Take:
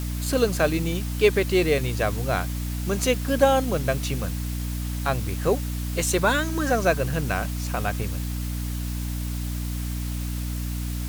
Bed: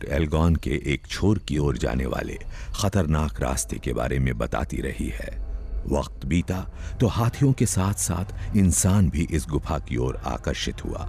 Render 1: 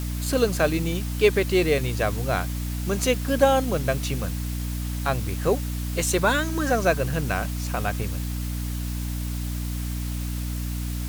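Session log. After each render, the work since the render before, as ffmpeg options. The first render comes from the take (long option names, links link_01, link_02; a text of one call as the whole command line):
ffmpeg -i in.wav -af anull out.wav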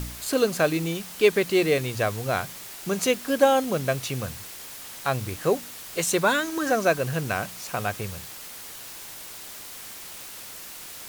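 ffmpeg -i in.wav -af "bandreject=frequency=60:width_type=h:width=4,bandreject=frequency=120:width_type=h:width=4,bandreject=frequency=180:width_type=h:width=4,bandreject=frequency=240:width_type=h:width=4,bandreject=frequency=300:width_type=h:width=4" out.wav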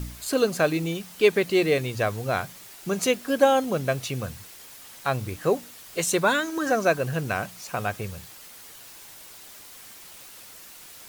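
ffmpeg -i in.wav -af "afftdn=noise_reduction=6:noise_floor=-41" out.wav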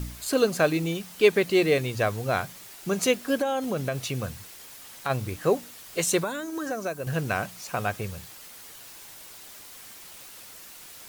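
ffmpeg -i in.wav -filter_complex "[0:a]asplit=3[link_01][link_02][link_03];[link_01]afade=type=out:start_time=3.4:duration=0.02[link_04];[link_02]acompressor=threshold=-23dB:ratio=5:attack=3.2:release=140:knee=1:detection=peak,afade=type=in:start_time=3.4:duration=0.02,afade=type=out:start_time=5.09:duration=0.02[link_05];[link_03]afade=type=in:start_time=5.09:duration=0.02[link_06];[link_04][link_05][link_06]amix=inputs=3:normalize=0,asettb=1/sr,asplit=3[link_07][link_08][link_09];[link_07]atrim=end=6.234[link_10];[link_08]atrim=start=6.23:end=7.07,asetpts=PTS-STARTPTS,afade=type=in:duration=0.004:curve=qsin,afade=type=out:start_time=0.836:duration=0.004:curve=qsin,acrossover=split=880|6600[link_11][link_12][link_13];[link_11]acompressor=threshold=-31dB:ratio=4[link_14];[link_12]acompressor=threshold=-39dB:ratio=4[link_15];[link_13]acompressor=threshold=-45dB:ratio=4[link_16];[link_14][link_15][link_16]amix=inputs=3:normalize=0[link_17];[link_09]atrim=start=7.066[link_18];[link_10][link_17]acrossfade=duration=0.004:curve1=hsin:curve2=qsin[link_19];[link_19][link_18]acrossfade=duration=0.004:curve1=qsin:curve2=hsin" out.wav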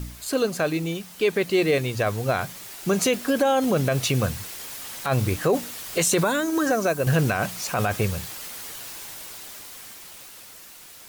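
ffmpeg -i in.wav -af "dynaudnorm=framelen=400:gausssize=11:maxgain=11.5dB,alimiter=limit=-12.5dB:level=0:latency=1:release=19" out.wav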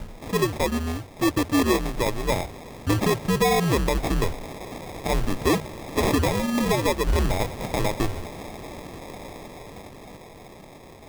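ffmpeg -i in.wav -af "afreqshift=-87,acrusher=samples=30:mix=1:aa=0.000001" out.wav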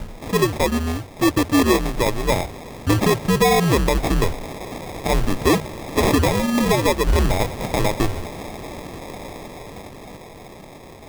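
ffmpeg -i in.wav -af "volume=4.5dB" out.wav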